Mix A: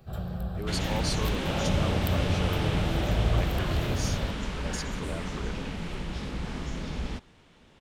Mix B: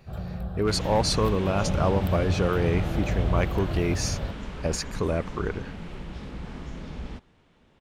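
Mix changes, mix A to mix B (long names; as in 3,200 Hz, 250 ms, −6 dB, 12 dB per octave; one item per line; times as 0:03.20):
speech +12.0 dB
second sound −3.0 dB
master: add high-shelf EQ 2,900 Hz −7.5 dB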